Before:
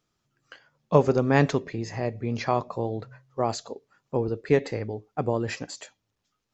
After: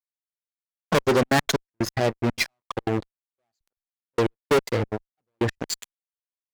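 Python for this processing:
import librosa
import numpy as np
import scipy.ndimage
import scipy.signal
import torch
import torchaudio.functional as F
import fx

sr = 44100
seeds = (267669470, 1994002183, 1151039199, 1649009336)

y = fx.bin_expand(x, sr, power=1.5)
y = fx.fuzz(y, sr, gain_db=34.0, gate_db=-42.0)
y = fx.low_shelf(y, sr, hz=150.0, db=-8.0)
y = fx.step_gate(y, sr, bpm=183, pattern='x.xx.x.x...', floor_db=-60.0, edge_ms=4.5)
y = fx.cheby_harmonics(y, sr, harmonics=(6,), levels_db=(-33,), full_scale_db=-8.5)
y = F.gain(torch.from_numpy(y), -1.5).numpy()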